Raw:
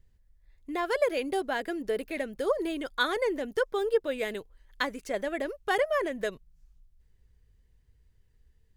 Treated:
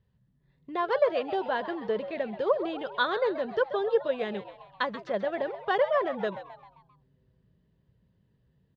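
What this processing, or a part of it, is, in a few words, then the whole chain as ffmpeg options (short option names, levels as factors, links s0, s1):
frequency-shifting delay pedal into a guitar cabinet: -filter_complex "[0:a]asplit=6[s0][s1][s2][s3][s4][s5];[s1]adelay=132,afreqshift=120,volume=0.224[s6];[s2]adelay=264,afreqshift=240,volume=0.112[s7];[s3]adelay=396,afreqshift=360,volume=0.0562[s8];[s4]adelay=528,afreqshift=480,volume=0.0279[s9];[s5]adelay=660,afreqshift=600,volume=0.014[s10];[s0][s6][s7][s8][s9][s10]amix=inputs=6:normalize=0,highpass=96,equalizer=f=120:t=q:w=4:g=7,equalizer=f=200:t=q:w=4:g=8,equalizer=f=280:t=q:w=4:g=-7,equalizer=f=570:t=q:w=4:g=3,equalizer=f=1000:t=q:w=4:g=5,equalizer=f=2200:t=q:w=4:g=-8,lowpass=f=4000:w=0.5412,lowpass=f=4000:w=1.3066"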